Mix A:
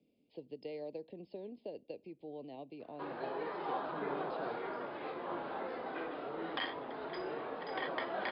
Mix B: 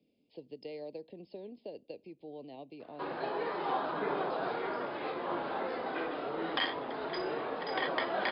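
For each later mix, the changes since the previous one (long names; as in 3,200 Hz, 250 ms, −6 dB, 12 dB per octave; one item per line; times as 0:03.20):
background +4.5 dB
master: remove high-frequency loss of the air 130 metres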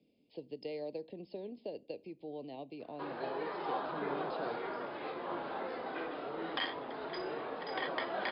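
speech: send +6.5 dB
background −4.0 dB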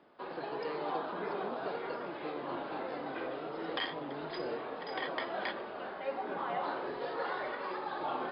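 background: entry −2.80 s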